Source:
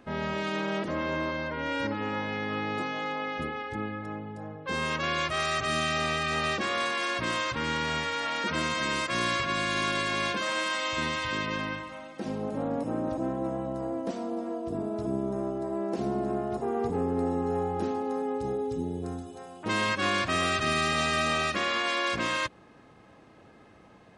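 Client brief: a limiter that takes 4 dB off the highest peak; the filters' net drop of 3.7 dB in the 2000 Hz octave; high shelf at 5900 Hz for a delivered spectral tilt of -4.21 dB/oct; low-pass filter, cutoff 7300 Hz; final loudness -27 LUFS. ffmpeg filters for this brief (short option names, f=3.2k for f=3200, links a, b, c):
-af "lowpass=7.3k,equalizer=f=2k:t=o:g=-5.5,highshelf=f=5.9k:g=7,volume=4.5dB,alimiter=limit=-14dB:level=0:latency=1"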